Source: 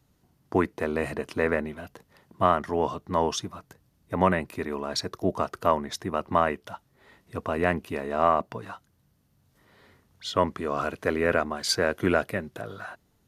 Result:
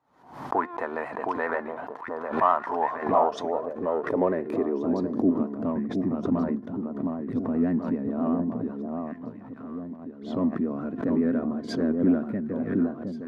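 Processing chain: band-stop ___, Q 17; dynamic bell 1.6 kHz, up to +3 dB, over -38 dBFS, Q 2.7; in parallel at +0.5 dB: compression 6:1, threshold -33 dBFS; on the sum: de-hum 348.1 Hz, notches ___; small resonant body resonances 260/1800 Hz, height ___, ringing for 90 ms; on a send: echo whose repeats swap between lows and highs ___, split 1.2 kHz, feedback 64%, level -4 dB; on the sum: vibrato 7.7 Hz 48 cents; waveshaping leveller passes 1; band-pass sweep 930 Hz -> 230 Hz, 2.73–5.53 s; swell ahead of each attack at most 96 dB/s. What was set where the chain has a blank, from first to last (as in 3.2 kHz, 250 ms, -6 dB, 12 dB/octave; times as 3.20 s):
2.8 kHz, 32, 7 dB, 716 ms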